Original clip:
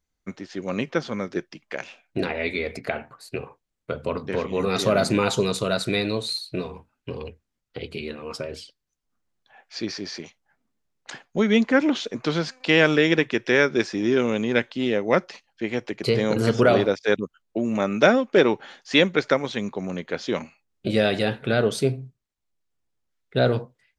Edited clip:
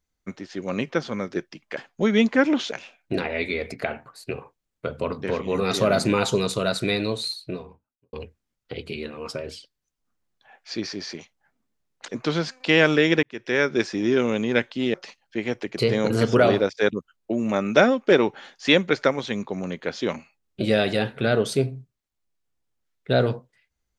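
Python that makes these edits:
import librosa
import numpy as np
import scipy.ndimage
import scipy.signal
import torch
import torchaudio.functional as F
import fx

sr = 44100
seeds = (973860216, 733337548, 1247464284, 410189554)

y = fx.studio_fade_out(x, sr, start_s=6.24, length_s=0.94)
y = fx.edit(y, sr, fx.move(start_s=11.13, length_s=0.95, to_s=1.77),
    fx.fade_in_span(start_s=13.23, length_s=0.7, curve='qsin'),
    fx.cut(start_s=14.94, length_s=0.26), tone=tone)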